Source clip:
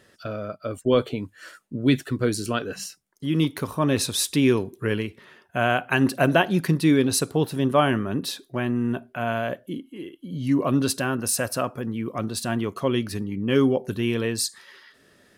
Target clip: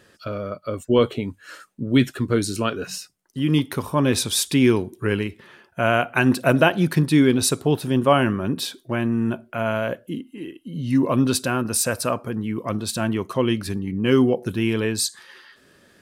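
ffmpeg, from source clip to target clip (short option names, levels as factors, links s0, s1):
-af "asetrate=42336,aresample=44100,volume=1.33"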